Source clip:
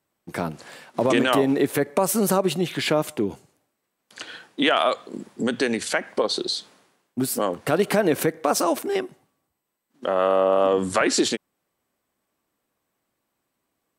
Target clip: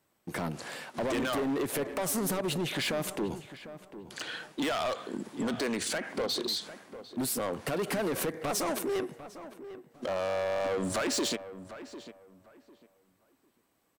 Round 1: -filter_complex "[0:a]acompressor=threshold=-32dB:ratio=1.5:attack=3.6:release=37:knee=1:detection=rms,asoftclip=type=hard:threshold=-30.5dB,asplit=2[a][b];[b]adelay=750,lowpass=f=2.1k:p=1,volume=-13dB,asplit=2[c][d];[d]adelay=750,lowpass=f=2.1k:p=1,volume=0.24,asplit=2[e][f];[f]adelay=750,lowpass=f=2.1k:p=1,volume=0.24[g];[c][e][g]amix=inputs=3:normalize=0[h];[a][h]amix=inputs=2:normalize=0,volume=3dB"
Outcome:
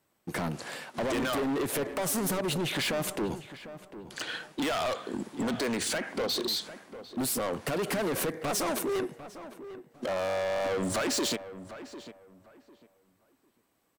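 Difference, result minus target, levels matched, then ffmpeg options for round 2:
compressor: peak gain reduction -3.5 dB
-filter_complex "[0:a]acompressor=threshold=-42.5dB:ratio=1.5:attack=3.6:release=37:knee=1:detection=rms,asoftclip=type=hard:threshold=-30.5dB,asplit=2[a][b];[b]adelay=750,lowpass=f=2.1k:p=1,volume=-13dB,asplit=2[c][d];[d]adelay=750,lowpass=f=2.1k:p=1,volume=0.24,asplit=2[e][f];[f]adelay=750,lowpass=f=2.1k:p=1,volume=0.24[g];[c][e][g]amix=inputs=3:normalize=0[h];[a][h]amix=inputs=2:normalize=0,volume=3dB"

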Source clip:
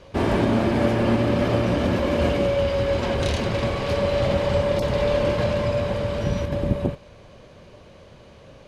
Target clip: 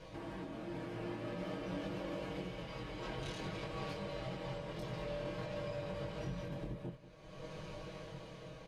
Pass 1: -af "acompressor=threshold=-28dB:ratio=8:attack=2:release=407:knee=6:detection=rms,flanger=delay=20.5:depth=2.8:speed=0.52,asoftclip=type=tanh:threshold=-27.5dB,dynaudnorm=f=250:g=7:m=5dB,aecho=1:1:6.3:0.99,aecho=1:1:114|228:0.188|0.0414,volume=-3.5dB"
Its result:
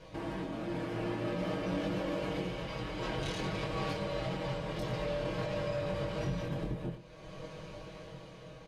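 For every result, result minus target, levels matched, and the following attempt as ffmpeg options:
echo 76 ms early; compressor: peak gain reduction -7.5 dB
-af "acompressor=threshold=-28dB:ratio=8:attack=2:release=407:knee=6:detection=rms,flanger=delay=20.5:depth=2.8:speed=0.52,asoftclip=type=tanh:threshold=-27.5dB,dynaudnorm=f=250:g=7:m=5dB,aecho=1:1:6.3:0.99,aecho=1:1:190|380:0.188|0.0414,volume=-3.5dB"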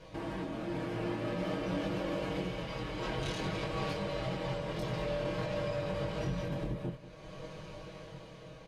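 compressor: peak gain reduction -7.5 dB
-af "acompressor=threshold=-36.5dB:ratio=8:attack=2:release=407:knee=6:detection=rms,flanger=delay=20.5:depth=2.8:speed=0.52,asoftclip=type=tanh:threshold=-27.5dB,dynaudnorm=f=250:g=7:m=5dB,aecho=1:1:6.3:0.99,aecho=1:1:190|380:0.188|0.0414,volume=-3.5dB"

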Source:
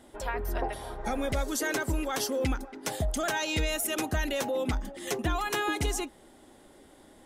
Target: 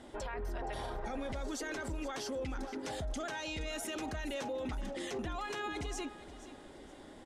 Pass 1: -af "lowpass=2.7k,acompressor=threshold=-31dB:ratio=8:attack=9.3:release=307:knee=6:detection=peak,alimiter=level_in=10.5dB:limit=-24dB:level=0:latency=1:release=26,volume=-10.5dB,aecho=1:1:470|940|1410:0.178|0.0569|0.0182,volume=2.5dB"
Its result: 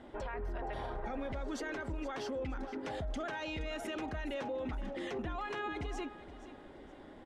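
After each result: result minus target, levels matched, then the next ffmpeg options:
8000 Hz band -9.5 dB; compressor: peak gain reduction +8 dB
-af "lowpass=6.5k,acompressor=threshold=-31dB:ratio=8:attack=9.3:release=307:knee=6:detection=peak,alimiter=level_in=10.5dB:limit=-24dB:level=0:latency=1:release=26,volume=-10.5dB,aecho=1:1:470|940|1410:0.178|0.0569|0.0182,volume=2.5dB"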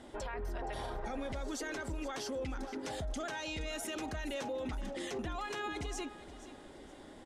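compressor: peak gain reduction +8 dB
-af "lowpass=6.5k,alimiter=level_in=10.5dB:limit=-24dB:level=0:latency=1:release=26,volume=-10.5dB,aecho=1:1:470|940|1410:0.178|0.0569|0.0182,volume=2.5dB"

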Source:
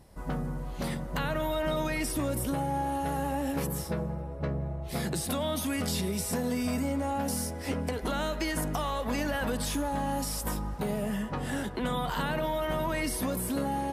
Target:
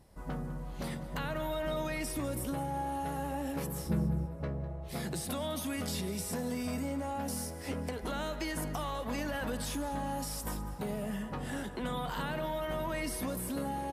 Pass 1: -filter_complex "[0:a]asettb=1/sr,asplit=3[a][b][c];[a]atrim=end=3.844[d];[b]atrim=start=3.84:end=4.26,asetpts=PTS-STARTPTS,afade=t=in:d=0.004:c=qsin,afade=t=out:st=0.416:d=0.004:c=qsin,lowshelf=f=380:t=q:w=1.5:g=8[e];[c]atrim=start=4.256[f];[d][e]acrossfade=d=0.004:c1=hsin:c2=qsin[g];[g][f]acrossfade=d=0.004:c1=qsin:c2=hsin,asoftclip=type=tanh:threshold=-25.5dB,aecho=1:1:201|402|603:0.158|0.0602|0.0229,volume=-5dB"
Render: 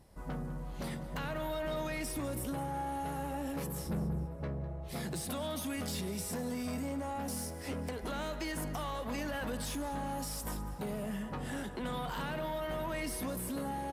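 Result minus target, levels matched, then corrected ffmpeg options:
soft clip: distortion +14 dB
-filter_complex "[0:a]asettb=1/sr,asplit=3[a][b][c];[a]atrim=end=3.844[d];[b]atrim=start=3.84:end=4.26,asetpts=PTS-STARTPTS,afade=t=in:d=0.004:c=qsin,afade=t=out:st=0.416:d=0.004:c=qsin,lowshelf=f=380:t=q:w=1.5:g=8[e];[c]atrim=start=4.256[f];[d][e]acrossfade=d=0.004:c1=hsin:c2=qsin[g];[g][f]acrossfade=d=0.004:c1=qsin:c2=hsin,asoftclip=type=tanh:threshold=-15dB,aecho=1:1:201|402|603:0.158|0.0602|0.0229,volume=-5dB"

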